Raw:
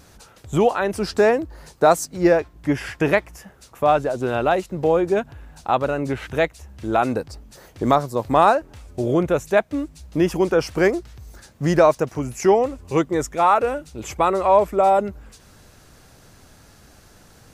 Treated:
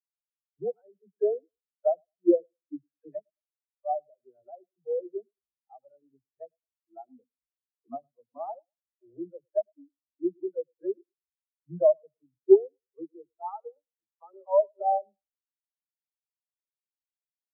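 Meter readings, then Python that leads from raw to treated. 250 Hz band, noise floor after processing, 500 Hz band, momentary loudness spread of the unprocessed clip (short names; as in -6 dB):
-11.5 dB, under -85 dBFS, -9.0 dB, 11 LU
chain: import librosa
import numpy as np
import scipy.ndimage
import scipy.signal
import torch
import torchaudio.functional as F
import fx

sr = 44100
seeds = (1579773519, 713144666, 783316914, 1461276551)

p1 = fx.dispersion(x, sr, late='lows', ms=72.0, hz=350.0)
p2 = p1 + fx.echo_feedback(p1, sr, ms=107, feedback_pct=49, wet_db=-10.5, dry=0)
p3 = fx.spectral_expand(p2, sr, expansion=4.0)
y = p3 * librosa.db_to_amplitude(-4.5)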